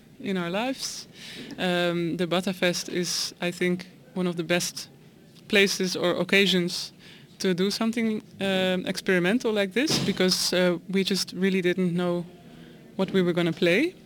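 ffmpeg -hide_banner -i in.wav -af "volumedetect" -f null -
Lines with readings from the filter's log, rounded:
mean_volume: -26.0 dB
max_volume: -6.6 dB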